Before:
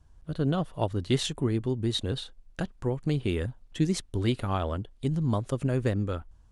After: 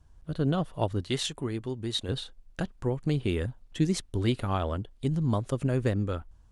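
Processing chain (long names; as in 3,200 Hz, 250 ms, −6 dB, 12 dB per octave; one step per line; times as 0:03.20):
0:01.01–0:02.09: low-shelf EQ 480 Hz −7 dB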